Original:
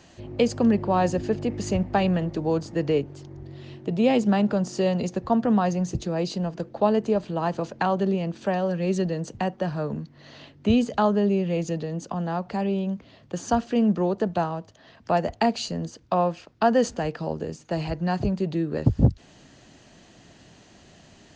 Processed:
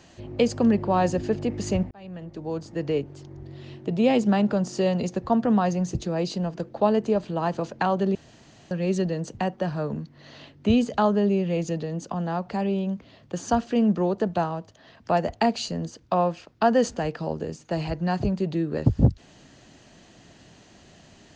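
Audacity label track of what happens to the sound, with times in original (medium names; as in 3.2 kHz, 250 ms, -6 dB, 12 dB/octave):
1.910000	3.830000	fade in equal-power
8.150000	8.710000	room tone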